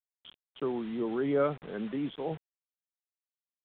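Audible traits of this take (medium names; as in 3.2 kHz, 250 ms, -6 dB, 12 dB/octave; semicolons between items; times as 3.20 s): a quantiser's noise floor 8-bit, dither none; µ-law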